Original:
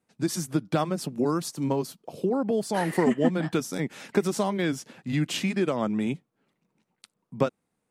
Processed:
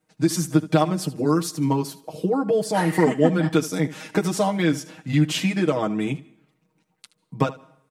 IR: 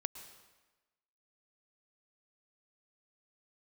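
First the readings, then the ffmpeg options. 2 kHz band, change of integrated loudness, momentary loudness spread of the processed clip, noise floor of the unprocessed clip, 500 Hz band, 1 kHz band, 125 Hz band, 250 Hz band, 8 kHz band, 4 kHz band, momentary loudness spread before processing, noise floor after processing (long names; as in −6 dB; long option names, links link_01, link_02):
+4.5 dB, +5.0 dB, 7 LU, −79 dBFS, +4.0 dB, +5.5 dB, +7.0 dB, +5.0 dB, +4.5 dB, +5.0 dB, 7 LU, −72 dBFS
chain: -filter_complex "[0:a]aecho=1:1:6.4:0.92,asplit=2[link_01][link_02];[1:a]atrim=start_sample=2205,asetrate=70560,aresample=44100,adelay=75[link_03];[link_02][link_03]afir=irnorm=-1:irlink=0,volume=-11.5dB[link_04];[link_01][link_04]amix=inputs=2:normalize=0,volume=2dB"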